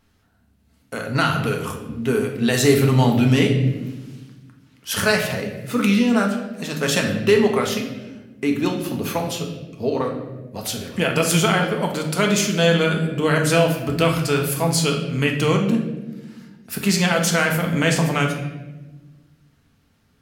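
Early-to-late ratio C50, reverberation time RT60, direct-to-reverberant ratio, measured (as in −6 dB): 6.5 dB, 1.2 s, 1.5 dB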